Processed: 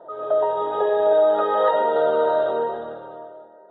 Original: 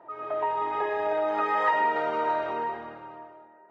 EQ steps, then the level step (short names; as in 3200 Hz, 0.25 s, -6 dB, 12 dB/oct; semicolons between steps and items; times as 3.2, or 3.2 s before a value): EQ curve 120 Hz 0 dB, 180 Hz +4 dB, 330 Hz 0 dB, 510 Hz +14 dB, 1000 Hz -3 dB, 1500 Hz +3 dB, 2300 Hz -21 dB, 3600 Hz +11 dB, 5500 Hz -29 dB, 7800 Hz -14 dB; +2.5 dB